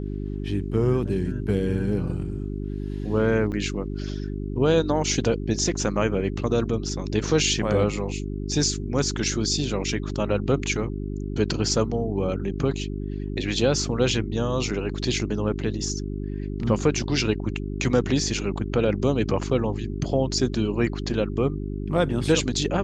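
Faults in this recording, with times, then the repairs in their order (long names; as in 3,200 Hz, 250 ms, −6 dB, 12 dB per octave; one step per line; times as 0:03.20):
mains hum 50 Hz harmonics 8 −30 dBFS
0:03.52–0:03.53: drop-out 7.6 ms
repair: hum removal 50 Hz, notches 8
repair the gap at 0:03.52, 7.6 ms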